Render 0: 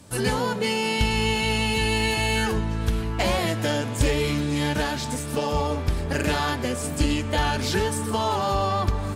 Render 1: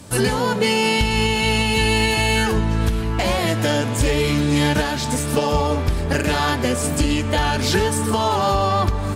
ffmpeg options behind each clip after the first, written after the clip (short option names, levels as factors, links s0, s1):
-af "alimiter=limit=0.158:level=0:latency=1:release=423,volume=2.51"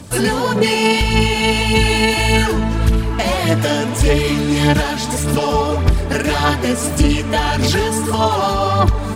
-af "aphaser=in_gain=1:out_gain=1:delay=4.6:decay=0.46:speed=1.7:type=sinusoidal,volume=1.19"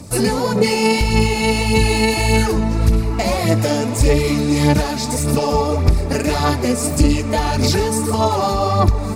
-af "equalizer=f=1000:t=o:w=0.33:g=-3,equalizer=f=1600:t=o:w=0.33:g=-10,equalizer=f=3150:t=o:w=0.33:g=-12,equalizer=f=5000:t=o:w=0.33:g=3"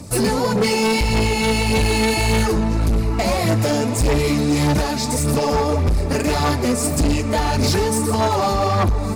-af "asoftclip=type=hard:threshold=0.211"